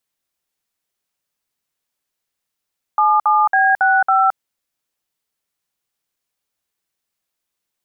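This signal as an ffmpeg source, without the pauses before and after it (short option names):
-f lavfi -i "aevalsrc='0.211*clip(min(mod(t,0.276),0.219-mod(t,0.276))/0.002,0,1)*(eq(floor(t/0.276),0)*(sin(2*PI*852*mod(t,0.276))+sin(2*PI*1209*mod(t,0.276)))+eq(floor(t/0.276),1)*(sin(2*PI*852*mod(t,0.276))+sin(2*PI*1209*mod(t,0.276)))+eq(floor(t/0.276),2)*(sin(2*PI*770*mod(t,0.276))+sin(2*PI*1633*mod(t,0.276)))+eq(floor(t/0.276),3)*(sin(2*PI*770*mod(t,0.276))+sin(2*PI*1477*mod(t,0.276)))+eq(floor(t/0.276),4)*(sin(2*PI*770*mod(t,0.276))+sin(2*PI*1336*mod(t,0.276))))':d=1.38:s=44100"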